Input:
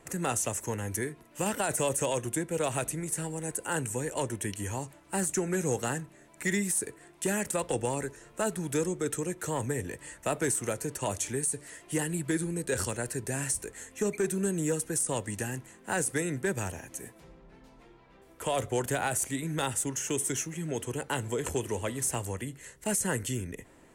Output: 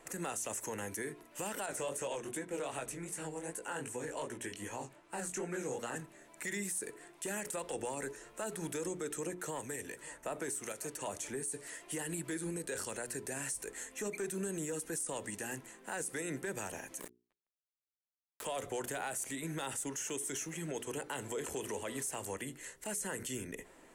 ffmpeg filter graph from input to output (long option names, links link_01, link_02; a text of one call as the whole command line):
ffmpeg -i in.wav -filter_complex "[0:a]asettb=1/sr,asplit=3[link_01][link_02][link_03];[link_01]atrim=end=1.664[link_04];[link_02]atrim=start=1.66:end=5.96,asetpts=PTS-STARTPTS,afade=type=in:duration=0.004:curve=qsin,afade=type=out:start_time=4.296:duration=0.004:curve=qsin,highshelf=frequency=7400:gain=-9.5,flanger=delay=16:depth=6.8:speed=2.6[link_05];[link_03]atrim=start=5.956[link_06];[link_04][link_05]acrossfade=duration=0.004:curve1=hsin:curve2=qsin[link_07];[link_07][link_06]acrossfade=duration=0.004:curve1=qsin:curve2=hsin,asettb=1/sr,asplit=3[link_08][link_09][link_10];[link_08]atrim=end=9.274[link_11];[link_09]atrim=start=9.27:end=11.5,asetpts=PTS-STARTPTS,afade=type=in:duration=0.004:curve=qsin,afade=type=out:start_time=2.226:duration=0.004:curve=qsin,acrossover=split=1700[link_12][link_13];[link_12]aeval=exprs='val(0)*(1-0.5/2+0.5/2*cos(2*PI*1*n/s))':channel_layout=same[link_14];[link_13]aeval=exprs='val(0)*(1-0.5/2-0.5/2*cos(2*PI*1*n/s))':channel_layout=same[link_15];[link_14][link_15]amix=inputs=2:normalize=0,aecho=1:1:554:0.0668,atrim=end_sample=98343[link_16];[link_10]atrim=start=11.496[link_17];[link_11][link_16]acrossfade=duration=0.004:curve1=hsin:curve2=qsin[link_18];[link_18][link_17]acrossfade=duration=0.004:curve1=qsin:curve2=hsin,asettb=1/sr,asplit=3[link_19][link_20][link_21];[link_19]atrim=end=17.004[link_22];[link_20]atrim=start=17:end=18.45,asetpts=PTS-STARTPTS,afade=type=in:duration=0.004:curve=qsin,afade=type=out:start_time=1.446:duration=0.004:curve=qsin,lowshelf=frequency=120:gain=6.5,acrusher=bits=5:mix=0:aa=0.5,bandreject=frequency=1400:width=11[link_23];[link_21]atrim=start=18.446[link_24];[link_22][link_23]acrossfade=duration=0.004:curve1=hsin:curve2=qsin[link_25];[link_25][link_24]acrossfade=duration=0.004:curve1=qsin:curve2=hsin,equalizer=frequency=88:width_type=o:width=1.8:gain=-14.5,bandreject=frequency=60:width_type=h:width=6,bandreject=frequency=120:width_type=h:width=6,bandreject=frequency=180:width_type=h:width=6,bandreject=frequency=240:width_type=h:width=6,bandreject=frequency=300:width_type=h:width=6,bandreject=frequency=360:width_type=h:width=6,bandreject=frequency=420:width_type=h:width=6,alimiter=level_in=6dB:limit=-24dB:level=0:latency=1:release=60,volume=-6dB" out.wav